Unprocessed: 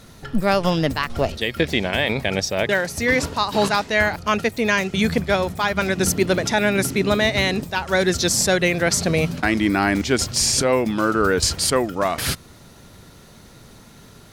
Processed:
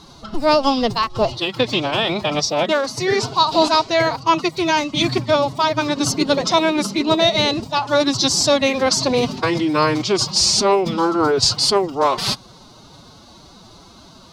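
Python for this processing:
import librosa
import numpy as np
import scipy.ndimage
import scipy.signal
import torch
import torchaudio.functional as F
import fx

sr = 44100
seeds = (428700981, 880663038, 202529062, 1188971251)

y = fx.pitch_keep_formants(x, sr, semitones=7.5)
y = fx.curve_eq(y, sr, hz=(290.0, 1100.0, 1700.0, 4500.0, 12000.0), db=(0, 8, -6, 9, -11))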